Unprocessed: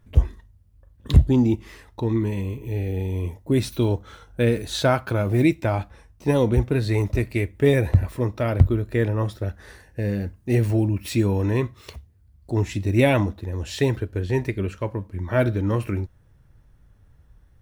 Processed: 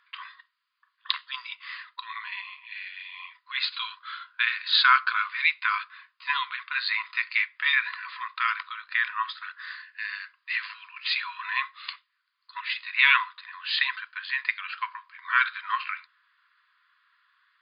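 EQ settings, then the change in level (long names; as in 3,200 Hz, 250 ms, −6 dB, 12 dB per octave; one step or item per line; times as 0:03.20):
linear-phase brick-wall band-pass 970–5,000 Hz
parametric band 1,300 Hz +7 dB 1.8 octaves
high-shelf EQ 2,400 Hz +10 dB
0.0 dB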